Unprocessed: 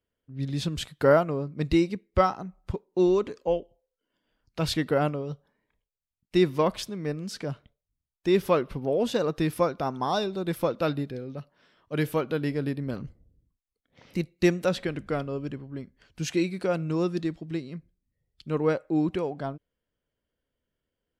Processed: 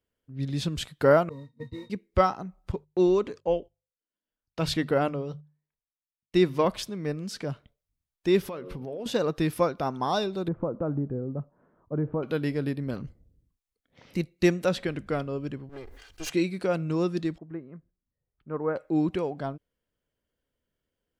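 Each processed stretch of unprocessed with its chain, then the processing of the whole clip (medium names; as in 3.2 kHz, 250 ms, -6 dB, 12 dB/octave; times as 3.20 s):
1.29–1.90 s: gate -32 dBFS, range -13 dB + modulation noise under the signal 11 dB + pitch-class resonator A#, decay 0.11 s
2.72–6.65 s: gate -55 dBFS, range -19 dB + treble shelf 11 kHz -5 dB + hum notches 50/100/150 Hz
8.44–9.06 s: de-hum 90.71 Hz, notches 6 + compression 8:1, threshold -32 dBFS
10.48–12.23 s: low-pass 1.2 kHz 24 dB/octave + compression 2.5:1, threshold -30 dBFS + bass shelf 410 Hz +6.5 dB
15.69–16.30 s: comb filter that takes the minimum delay 2.5 ms + peaking EQ 170 Hz -13 dB 1.7 oct + decay stretcher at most 49 dB/s
17.38–18.76 s: low-pass 1.5 kHz 24 dB/octave + bass shelf 440 Hz -8.5 dB
whole clip: none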